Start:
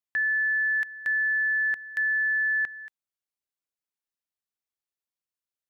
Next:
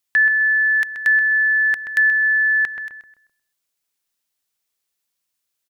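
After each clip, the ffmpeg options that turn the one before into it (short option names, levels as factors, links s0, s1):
-filter_complex "[0:a]highshelf=f=2100:g=9,asplit=2[s0][s1];[s1]adelay=129,lowpass=f=1400:p=1,volume=0.596,asplit=2[s2][s3];[s3]adelay=129,lowpass=f=1400:p=1,volume=0.44,asplit=2[s4][s5];[s5]adelay=129,lowpass=f=1400:p=1,volume=0.44,asplit=2[s6][s7];[s7]adelay=129,lowpass=f=1400:p=1,volume=0.44,asplit=2[s8][s9];[s9]adelay=129,lowpass=f=1400:p=1,volume=0.44[s10];[s2][s4][s6][s8][s10]amix=inputs=5:normalize=0[s11];[s0][s11]amix=inputs=2:normalize=0,volume=2.37"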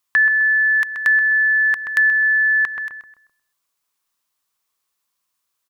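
-filter_complex "[0:a]equalizer=f=1100:t=o:w=0.5:g=11.5,asplit=2[s0][s1];[s1]acompressor=threshold=0.0891:ratio=6,volume=0.794[s2];[s0][s2]amix=inputs=2:normalize=0,volume=0.668"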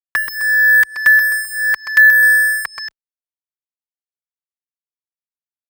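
-filter_complex "[0:a]acrusher=bits=3:mix=0:aa=0.5,asplit=2[s0][s1];[s1]adelay=3.7,afreqshift=-0.84[s2];[s0][s2]amix=inputs=2:normalize=1,volume=2.24"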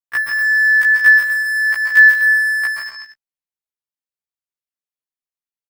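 -filter_complex "[0:a]asplit=2[s0][s1];[s1]aecho=0:1:137|163|208|237:0.447|0.447|0.126|0.251[s2];[s0][s2]amix=inputs=2:normalize=0,afftfilt=real='re*1.73*eq(mod(b,3),0)':imag='im*1.73*eq(mod(b,3),0)':win_size=2048:overlap=0.75,volume=0.891"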